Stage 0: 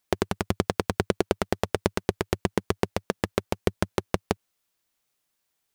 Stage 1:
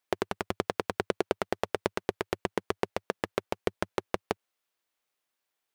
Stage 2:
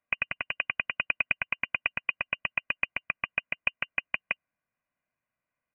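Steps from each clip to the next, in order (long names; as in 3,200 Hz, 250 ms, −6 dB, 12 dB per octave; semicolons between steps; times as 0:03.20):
bass and treble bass −11 dB, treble −6 dB; level −2.5 dB
comb filter 2.2 ms, depth 60%; voice inversion scrambler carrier 2,900 Hz; level −1.5 dB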